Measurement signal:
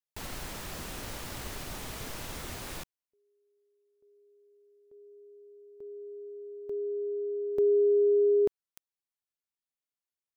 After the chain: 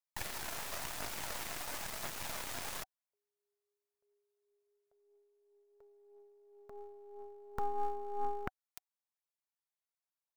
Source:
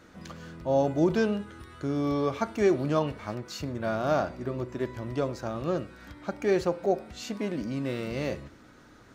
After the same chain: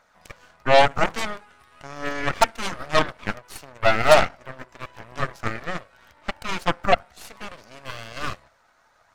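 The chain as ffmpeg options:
ffmpeg -i in.wav -af "equalizer=frequency=3000:width_type=o:width=0.44:gain=-5,bandreject=frequency=760:width=12,aphaser=in_gain=1:out_gain=1:delay=3:decay=0.34:speed=0.97:type=triangular,lowshelf=frequency=490:width_type=q:width=3:gain=-13.5,aeval=exprs='0.251*(cos(1*acos(clip(val(0)/0.251,-1,1)))-cos(1*PI/2))+0.01*(cos(3*acos(clip(val(0)/0.251,-1,1)))-cos(3*PI/2))+0.0398*(cos(7*acos(clip(val(0)/0.251,-1,1)))-cos(7*PI/2))+0.0447*(cos(8*acos(clip(val(0)/0.251,-1,1)))-cos(8*PI/2))':channel_layout=same,volume=7.5dB" out.wav

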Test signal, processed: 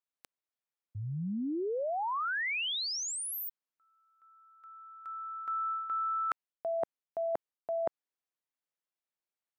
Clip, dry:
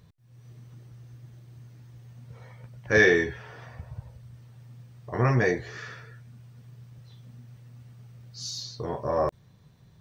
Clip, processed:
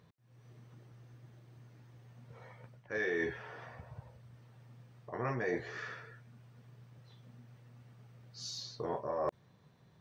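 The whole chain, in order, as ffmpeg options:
ffmpeg -i in.wav -af "highpass=frequency=330:poles=1,highshelf=frequency=3400:gain=-11,areverse,acompressor=threshold=-31dB:ratio=16,areverse" out.wav

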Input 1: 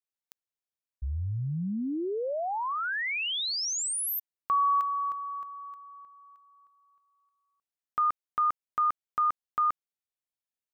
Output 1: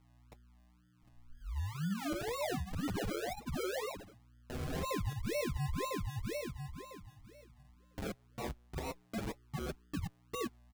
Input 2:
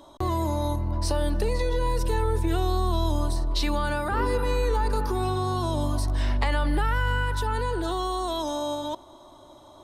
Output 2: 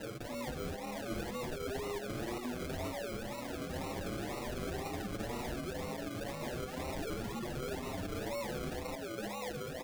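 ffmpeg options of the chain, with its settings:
ffmpeg -i in.wav -filter_complex "[0:a]aecho=1:1:755:0.237,highpass=frequency=240:width_type=q:width=0.5412,highpass=frequency=240:width_type=q:width=1.307,lowpass=frequency=2000:width_type=q:width=0.5176,lowpass=frequency=2000:width_type=q:width=0.7071,lowpass=frequency=2000:width_type=q:width=1.932,afreqshift=-87,asuperstop=centerf=920:order=20:qfactor=4.8,equalizer=frequency=220:width_type=o:width=0.31:gain=-8,asplit=2[link_01][link_02];[link_02]asoftclip=type=hard:threshold=-30.5dB,volume=-9dB[link_03];[link_01][link_03]amix=inputs=2:normalize=0,bandreject=frequency=60:width_type=h:width=6,bandreject=frequency=120:width_type=h:width=6,bandreject=frequency=180:width_type=h:width=6,bandreject=frequency=240:width_type=h:width=6,bandreject=frequency=300:width_type=h:width=6,bandreject=frequency=360:width_type=h:width=6,bandreject=frequency=420:width_type=h:width=6,aresample=8000,aeval=exprs='(mod(16.8*val(0)+1,2)-1)/16.8':channel_layout=same,aresample=44100,acompressor=threshold=-44dB:ratio=5:attack=1.1:release=208:knee=1:detection=peak,aeval=exprs='val(0)+0.000282*(sin(2*PI*60*n/s)+sin(2*PI*2*60*n/s)/2+sin(2*PI*3*60*n/s)/3+sin(2*PI*4*60*n/s)/4+sin(2*PI*5*60*n/s)/5)':channel_layout=same,alimiter=level_in=15.5dB:limit=-24dB:level=0:latency=1:release=365,volume=-15.5dB,acrusher=samples=38:mix=1:aa=0.000001:lfo=1:lforange=22.8:lforate=2,asplit=2[link_04][link_05];[link_05]adelay=6.9,afreqshift=0.98[link_06];[link_04][link_06]amix=inputs=2:normalize=1,volume=11.5dB" out.wav

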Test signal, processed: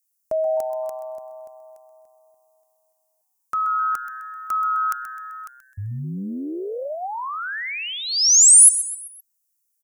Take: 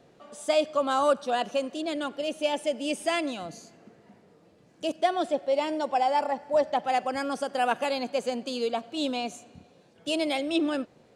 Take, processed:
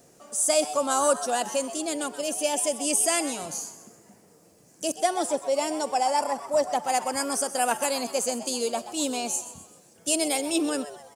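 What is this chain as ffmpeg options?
ffmpeg -i in.wav -filter_complex "[0:a]aexciter=amount=8.3:drive=5.4:freq=5400,asplit=5[link_01][link_02][link_03][link_04][link_05];[link_02]adelay=129,afreqshift=130,volume=-13.5dB[link_06];[link_03]adelay=258,afreqshift=260,volume=-20.6dB[link_07];[link_04]adelay=387,afreqshift=390,volume=-27.8dB[link_08];[link_05]adelay=516,afreqshift=520,volume=-34.9dB[link_09];[link_01][link_06][link_07][link_08][link_09]amix=inputs=5:normalize=0" out.wav

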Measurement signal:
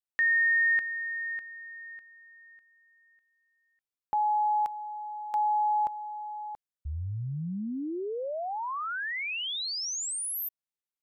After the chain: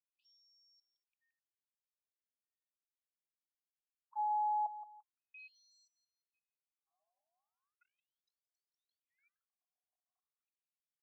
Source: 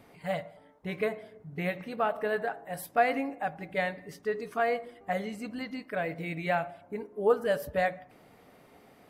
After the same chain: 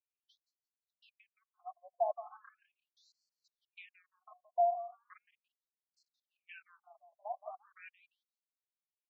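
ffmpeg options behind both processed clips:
ffmpeg -i in.wav -filter_complex "[0:a]aeval=exprs='val(0)+0.5*0.0376*sgn(val(0))':channel_layout=same,anlmdn=0.631,bandreject=frequency=263.6:width_type=h:width=4,bandreject=frequency=527.2:width_type=h:width=4,bandreject=frequency=790.8:width_type=h:width=4,bandreject=frequency=1054.4:width_type=h:width=4,bandreject=frequency=1318:width_type=h:width=4,bandreject=frequency=1581.6:width_type=h:width=4,acrusher=bits=8:mode=log:mix=0:aa=0.000001,agate=range=-51dB:threshold=-27dB:ratio=16:release=25:detection=rms,aecho=1:1:172|344|516:0.2|0.0619|0.0192,adynamicequalizer=threshold=0.00794:dfrequency=470:dqfactor=5.2:tfrequency=470:tqfactor=5.2:attack=5:release=100:ratio=0.417:range=2:mode=cutabove:tftype=bell,asplit=3[link_01][link_02][link_03];[link_01]bandpass=frequency=730:width_type=q:width=8,volume=0dB[link_04];[link_02]bandpass=frequency=1090:width_type=q:width=8,volume=-6dB[link_05];[link_03]bandpass=frequency=2440:width_type=q:width=8,volume=-9dB[link_06];[link_04][link_05][link_06]amix=inputs=3:normalize=0,afftfilt=real='re*between(b*sr/1024,730*pow(6000/730,0.5+0.5*sin(2*PI*0.38*pts/sr))/1.41,730*pow(6000/730,0.5+0.5*sin(2*PI*0.38*pts/sr))*1.41)':imag='im*between(b*sr/1024,730*pow(6000/730,0.5+0.5*sin(2*PI*0.38*pts/sr))/1.41,730*pow(6000/730,0.5+0.5*sin(2*PI*0.38*pts/sr))*1.41)':win_size=1024:overlap=0.75" out.wav

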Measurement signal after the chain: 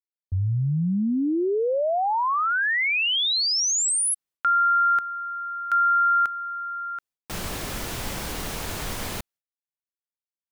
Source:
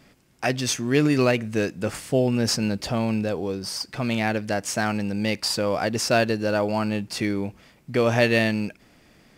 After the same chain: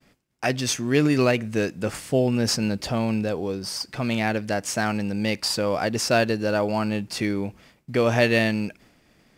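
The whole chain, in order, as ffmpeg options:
ffmpeg -i in.wav -af "agate=range=-33dB:threshold=-50dB:ratio=3:detection=peak" out.wav

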